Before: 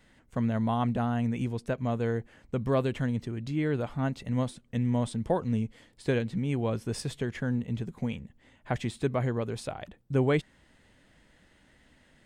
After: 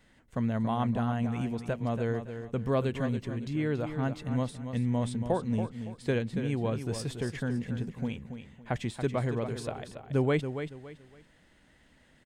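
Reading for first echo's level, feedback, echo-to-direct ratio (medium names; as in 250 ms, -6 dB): -9.0 dB, 29%, -8.5 dB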